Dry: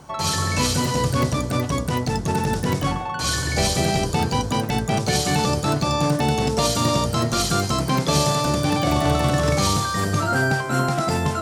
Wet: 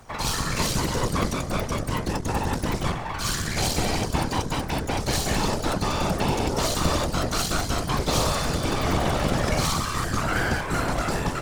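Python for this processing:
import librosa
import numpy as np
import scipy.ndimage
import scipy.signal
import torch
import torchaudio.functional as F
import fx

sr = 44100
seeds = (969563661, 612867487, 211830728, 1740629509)

y = np.maximum(x, 0.0)
y = fx.whisperise(y, sr, seeds[0])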